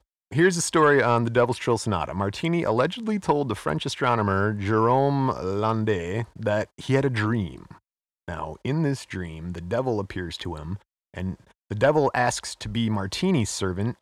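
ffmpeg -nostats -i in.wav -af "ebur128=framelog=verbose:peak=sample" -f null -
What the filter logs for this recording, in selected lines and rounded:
Integrated loudness:
  I:         -24.5 LUFS
  Threshold: -34.9 LUFS
Loudness range:
  LRA:         7.2 LU
  Threshold: -45.5 LUFS
  LRA low:   -30.1 LUFS
  LRA high:  -22.9 LUFS
Sample peak:
  Peak:       -8.4 dBFS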